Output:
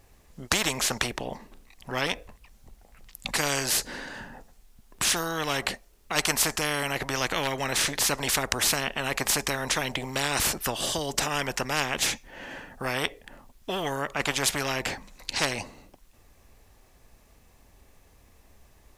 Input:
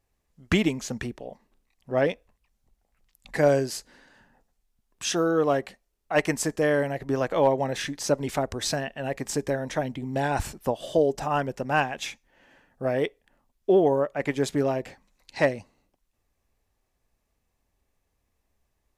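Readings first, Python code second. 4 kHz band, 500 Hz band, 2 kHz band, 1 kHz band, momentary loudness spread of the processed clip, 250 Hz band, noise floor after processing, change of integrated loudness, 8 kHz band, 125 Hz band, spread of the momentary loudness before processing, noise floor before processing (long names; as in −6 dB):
+9.0 dB, −9.0 dB, +3.5 dB, −1.5 dB, 13 LU, −7.0 dB, −58 dBFS, −0.5 dB, +9.0 dB, −4.0 dB, 12 LU, −76 dBFS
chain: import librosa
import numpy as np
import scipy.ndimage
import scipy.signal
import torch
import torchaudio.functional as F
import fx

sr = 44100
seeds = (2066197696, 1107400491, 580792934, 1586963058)

y = fx.spectral_comp(x, sr, ratio=4.0)
y = y * librosa.db_to_amplitude(6.0)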